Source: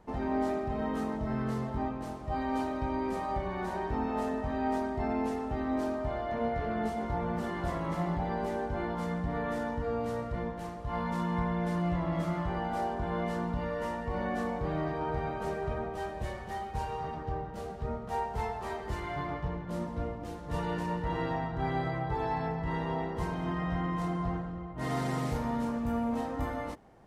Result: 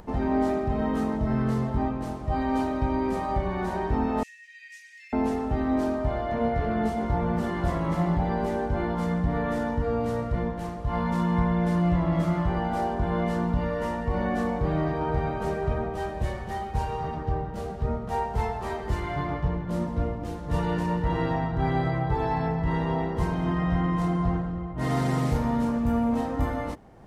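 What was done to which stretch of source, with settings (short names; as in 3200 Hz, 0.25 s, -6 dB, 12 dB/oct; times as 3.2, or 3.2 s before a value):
4.23–5.13 rippled Chebyshev high-pass 1800 Hz, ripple 9 dB
whole clip: low shelf 270 Hz +5.5 dB; upward compressor, threshold -46 dBFS; gain +4 dB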